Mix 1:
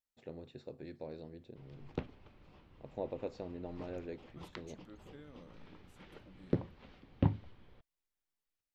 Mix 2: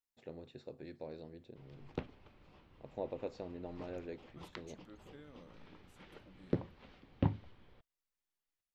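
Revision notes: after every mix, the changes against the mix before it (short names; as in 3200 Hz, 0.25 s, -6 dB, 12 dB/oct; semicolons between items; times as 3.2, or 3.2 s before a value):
master: add low shelf 320 Hz -3 dB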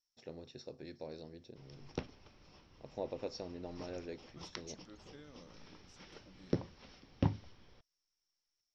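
master: add synth low-pass 5500 Hz, resonance Q 15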